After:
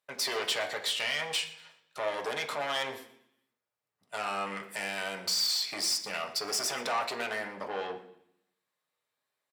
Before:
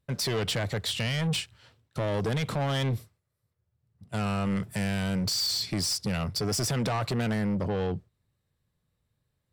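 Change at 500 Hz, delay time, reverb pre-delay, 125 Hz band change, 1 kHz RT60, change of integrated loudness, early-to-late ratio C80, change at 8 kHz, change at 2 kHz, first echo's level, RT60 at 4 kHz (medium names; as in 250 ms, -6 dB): -3.5 dB, 119 ms, 3 ms, -26.5 dB, 0.70 s, -2.5 dB, 13.0 dB, -0.5 dB, +2.5 dB, -18.5 dB, 0.80 s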